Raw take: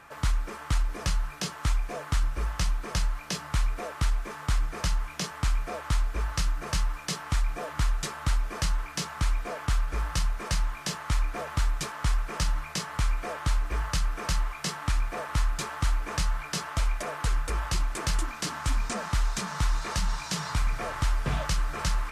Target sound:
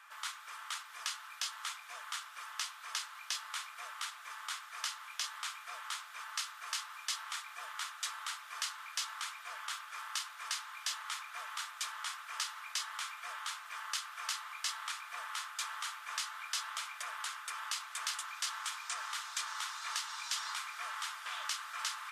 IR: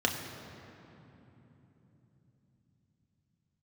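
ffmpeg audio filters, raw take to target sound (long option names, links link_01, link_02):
-filter_complex "[0:a]highpass=frequency=1100:width=0.5412,highpass=frequency=1100:width=1.3066,asplit=2[link_01][link_02];[link_02]equalizer=frequency=3700:width_type=o:width=0.37:gain=14[link_03];[1:a]atrim=start_sample=2205,lowpass=4300[link_04];[link_03][link_04]afir=irnorm=-1:irlink=0,volume=-23.5dB[link_05];[link_01][link_05]amix=inputs=2:normalize=0,volume=-3.5dB"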